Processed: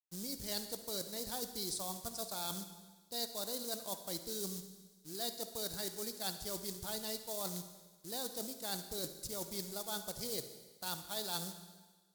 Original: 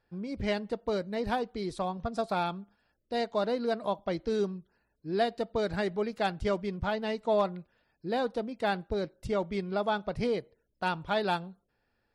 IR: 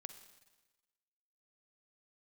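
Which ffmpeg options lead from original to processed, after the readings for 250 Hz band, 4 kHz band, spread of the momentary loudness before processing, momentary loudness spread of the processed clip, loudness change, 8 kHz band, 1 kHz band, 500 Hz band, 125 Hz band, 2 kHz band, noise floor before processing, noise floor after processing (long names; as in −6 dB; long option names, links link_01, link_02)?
−12.5 dB, +0.5 dB, 5 LU, 7 LU, −8.0 dB, can't be measured, −15.0 dB, −14.5 dB, −11.5 dB, −14.5 dB, −77 dBFS, −66 dBFS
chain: -filter_complex "[0:a]areverse,acompressor=threshold=-39dB:ratio=12,areverse,acrusher=bits=5:mode=log:mix=0:aa=0.000001,aexciter=amount=12.6:drive=4.2:freq=3800,aeval=exprs='sgn(val(0))*max(abs(val(0))-0.00141,0)':channel_layout=same[link_01];[1:a]atrim=start_sample=2205,asetrate=38808,aresample=44100[link_02];[link_01][link_02]afir=irnorm=-1:irlink=0,volume=3dB"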